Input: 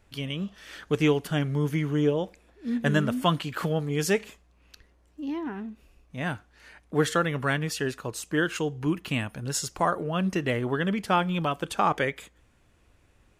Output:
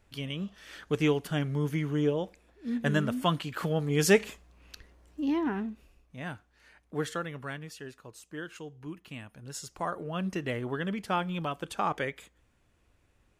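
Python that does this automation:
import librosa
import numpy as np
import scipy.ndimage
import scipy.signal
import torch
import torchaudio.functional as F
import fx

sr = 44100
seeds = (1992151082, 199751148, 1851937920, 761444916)

y = fx.gain(x, sr, db=fx.line((3.63, -3.5), (4.17, 3.5), (5.56, 3.5), (6.2, -8.0), (6.94, -8.0), (7.79, -14.5), (9.17, -14.5), (10.15, -6.0)))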